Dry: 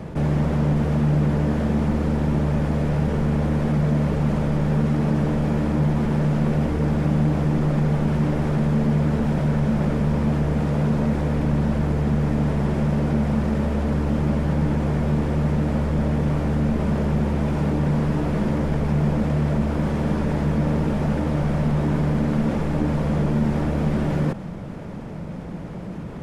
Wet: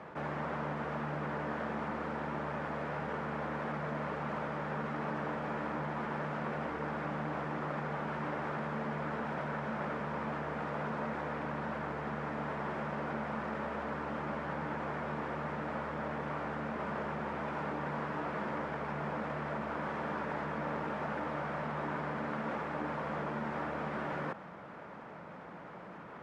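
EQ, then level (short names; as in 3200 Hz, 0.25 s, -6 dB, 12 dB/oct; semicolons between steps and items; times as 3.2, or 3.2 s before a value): band-pass 1300 Hz, Q 1.3; -1.5 dB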